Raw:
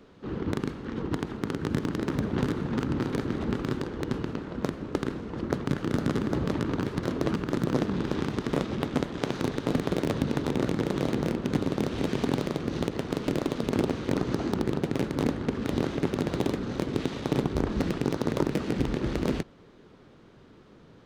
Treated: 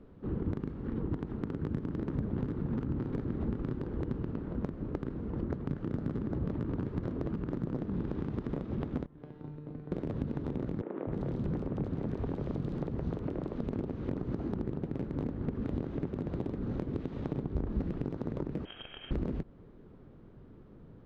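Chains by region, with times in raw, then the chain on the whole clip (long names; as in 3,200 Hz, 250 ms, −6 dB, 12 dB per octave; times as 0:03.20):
0:09.06–0:09.92: high-frequency loss of the air 160 metres + tuned comb filter 150 Hz, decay 1.2 s, mix 90%
0:10.81–0:13.53: high-shelf EQ 11,000 Hz −5 dB + three-band delay without the direct sound mids, lows, highs 260/310 ms, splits 260/2,600 Hz
0:18.65–0:19.11: high-pass filter 290 Hz 24 dB per octave + comb filter 1 ms, depth 38% + voice inversion scrambler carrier 3,500 Hz
whole clip: high-shelf EQ 3,900 Hz −10.5 dB; downward compressor, threshold −30 dBFS; spectral tilt −3 dB per octave; level −6.5 dB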